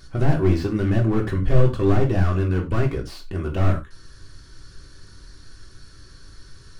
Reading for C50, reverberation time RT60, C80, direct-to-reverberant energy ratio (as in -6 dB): 11.5 dB, not exponential, 19.0 dB, 0.0 dB